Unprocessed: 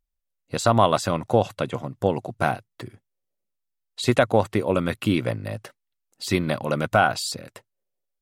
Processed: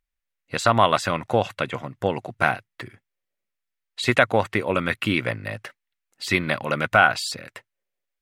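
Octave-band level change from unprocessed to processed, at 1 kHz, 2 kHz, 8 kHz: +1.5, +7.0, −1.5 decibels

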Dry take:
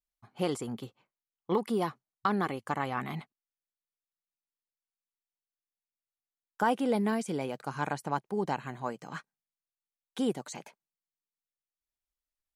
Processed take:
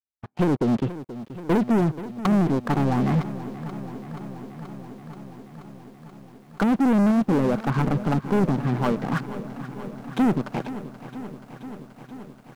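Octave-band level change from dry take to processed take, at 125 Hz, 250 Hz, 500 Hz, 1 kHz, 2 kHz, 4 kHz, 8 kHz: +16.0 dB, +13.0 dB, +7.0 dB, +4.5 dB, +5.0 dB, +3.0 dB, can't be measured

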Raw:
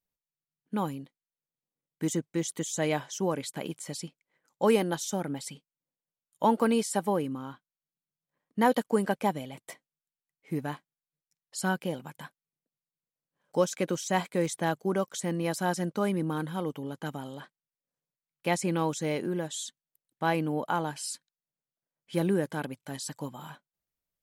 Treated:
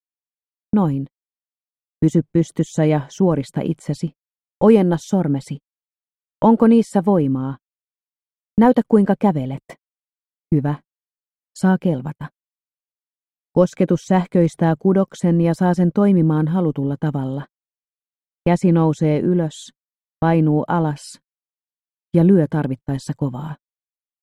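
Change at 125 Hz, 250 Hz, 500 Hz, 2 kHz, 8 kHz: +17.0 dB, +15.0 dB, +10.5 dB, +3.5 dB, can't be measured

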